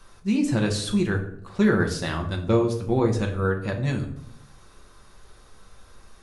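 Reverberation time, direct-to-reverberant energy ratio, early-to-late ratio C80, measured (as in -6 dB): 0.70 s, 1.0 dB, 12.5 dB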